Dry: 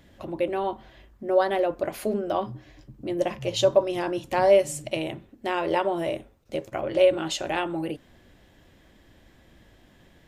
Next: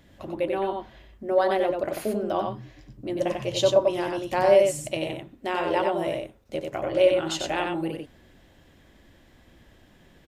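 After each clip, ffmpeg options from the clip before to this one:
-af "aecho=1:1:93:0.631,volume=-1dB"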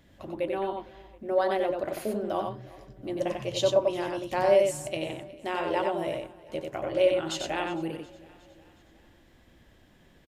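-af "aecho=1:1:363|726|1089|1452:0.0841|0.0463|0.0255|0.014,volume=-3.5dB"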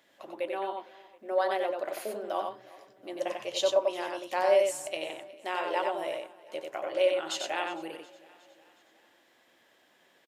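-af "highpass=520"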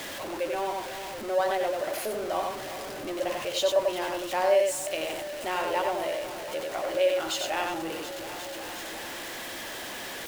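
-af "aeval=exprs='val(0)+0.5*0.0251*sgn(val(0))':c=same"

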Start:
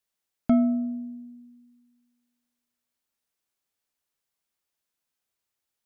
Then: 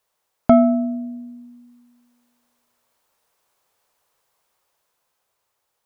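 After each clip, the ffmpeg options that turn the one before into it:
-af "equalizer=f=125:t=o:w=1:g=3,equalizer=f=250:t=o:w=1:g=-5,equalizer=f=500:t=o:w=1:g=8,equalizer=f=1k:t=o:w=1:g=9,dynaudnorm=f=260:g=11:m=4.5dB,volume=8dB"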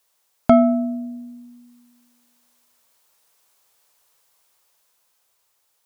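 -af "highshelf=f=2.3k:g=10,volume=-1dB"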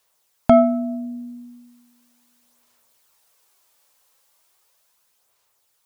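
-af "aphaser=in_gain=1:out_gain=1:delay=3.8:decay=0.32:speed=0.37:type=sinusoidal"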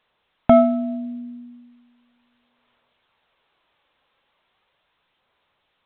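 -ar 8000 -c:a pcm_alaw

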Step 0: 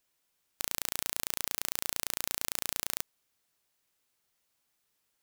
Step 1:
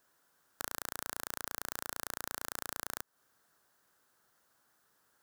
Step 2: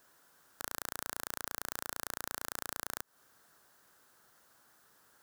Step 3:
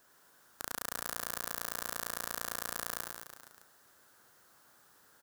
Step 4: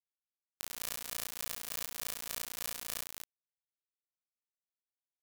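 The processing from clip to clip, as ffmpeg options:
-af "highpass=f=110:p=1,highshelf=f=1.9k:t=q:w=3:g=-6,acompressor=threshold=-43dB:ratio=5,volume=9.5dB"
-af "alimiter=limit=-18dB:level=0:latency=1:release=109,volume=7dB"
-af "aecho=1:1:100|210|331|464.1|610.5:0.631|0.398|0.251|0.158|0.1"
-filter_complex "[0:a]tremolo=f=3.4:d=0.52,acrusher=bits=3:mix=0:aa=0.000001,asplit=2[a][b];[b]adelay=22,volume=-3dB[c];[a][c]amix=inputs=2:normalize=0"

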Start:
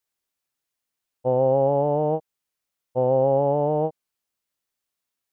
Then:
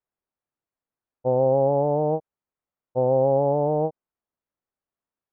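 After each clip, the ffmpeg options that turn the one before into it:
-af "lowpass=1.2k"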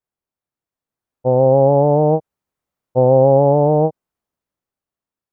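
-af "equalizer=f=110:w=0.55:g=4,dynaudnorm=f=210:g=11:m=11.5dB"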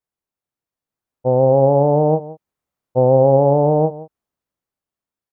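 -af "aecho=1:1:171:0.141,volume=-1dB"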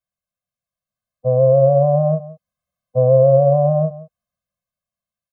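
-af "afftfilt=real='re*eq(mod(floor(b*sr/1024/250),2),0)':imag='im*eq(mod(floor(b*sr/1024/250),2),0)':win_size=1024:overlap=0.75,volume=1.5dB"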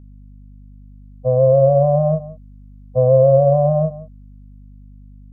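-af "aeval=exprs='val(0)+0.01*(sin(2*PI*50*n/s)+sin(2*PI*2*50*n/s)/2+sin(2*PI*3*50*n/s)/3+sin(2*PI*4*50*n/s)/4+sin(2*PI*5*50*n/s)/5)':c=same"

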